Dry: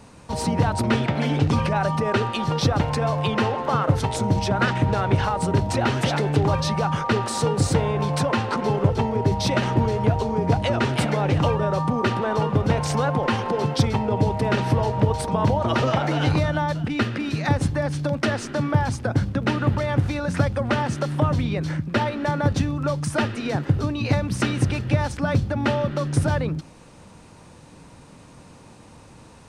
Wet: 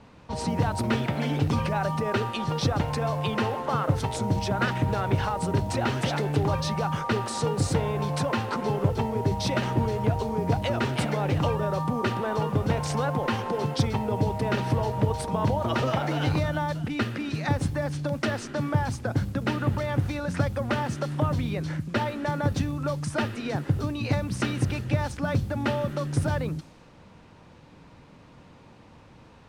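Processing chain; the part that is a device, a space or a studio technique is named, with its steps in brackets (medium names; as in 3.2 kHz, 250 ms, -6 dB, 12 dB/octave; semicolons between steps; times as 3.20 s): cassette deck with a dynamic noise filter (white noise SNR 31 dB; level-controlled noise filter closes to 3 kHz, open at -19 dBFS); trim -4.5 dB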